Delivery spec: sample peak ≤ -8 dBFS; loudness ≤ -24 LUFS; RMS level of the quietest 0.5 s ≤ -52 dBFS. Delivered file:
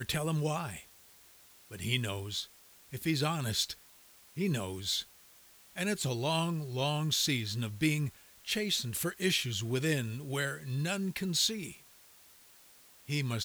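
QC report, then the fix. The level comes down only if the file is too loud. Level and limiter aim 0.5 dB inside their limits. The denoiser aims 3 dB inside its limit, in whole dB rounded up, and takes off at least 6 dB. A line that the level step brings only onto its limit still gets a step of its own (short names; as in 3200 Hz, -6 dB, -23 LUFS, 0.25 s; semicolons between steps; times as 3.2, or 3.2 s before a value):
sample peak -16.0 dBFS: OK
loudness -33.0 LUFS: OK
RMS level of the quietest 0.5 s -59 dBFS: OK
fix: none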